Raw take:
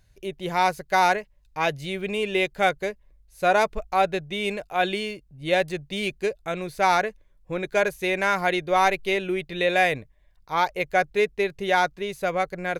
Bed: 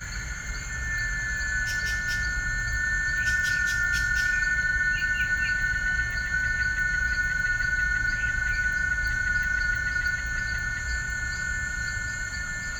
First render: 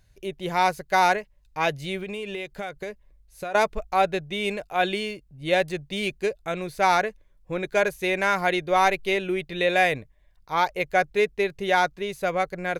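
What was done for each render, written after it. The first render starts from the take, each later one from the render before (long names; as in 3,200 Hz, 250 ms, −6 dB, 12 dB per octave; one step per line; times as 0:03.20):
0:01.99–0:03.55: downward compressor 12 to 1, threshold −28 dBFS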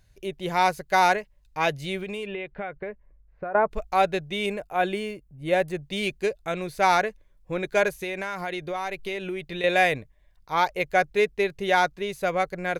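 0:02.25–0:03.70: low-pass filter 3,000 Hz → 1,500 Hz 24 dB per octave
0:04.46–0:05.83: parametric band 4,200 Hz −9 dB 1.6 octaves
0:07.91–0:09.64: downward compressor 4 to 1, threshold −28 dBFS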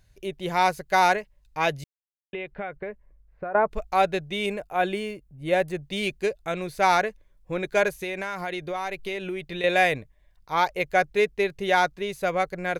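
0:01.84–0:02.33: silence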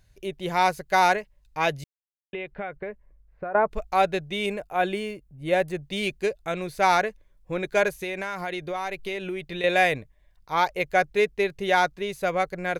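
no processing that can be heard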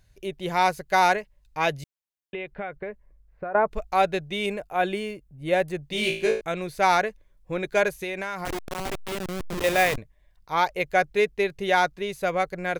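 0:05.90–0:06.41: flutter between parallel walls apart 3.1 metres, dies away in 0.43 s
0:08.45–0:09.98: hold until the input has moved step −23.5 dBFS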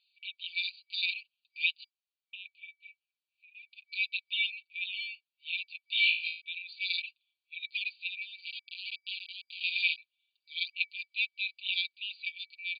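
brick-wall band-pass 2,300–4,800 Hz
comb filter 5.6 ms, depth 83%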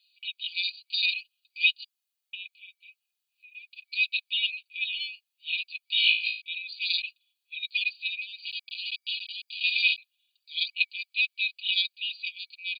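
spectral tilt +2.5 dB per octave
comb filter 2.4 ms, depth 79%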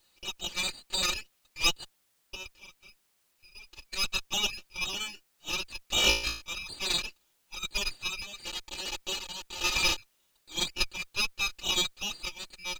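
lower of the sound and its delayed copy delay 3.4 ms
bit-depth reduction 12 bits, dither triangular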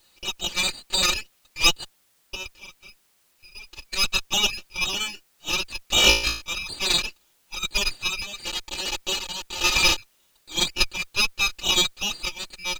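level +7.5 dB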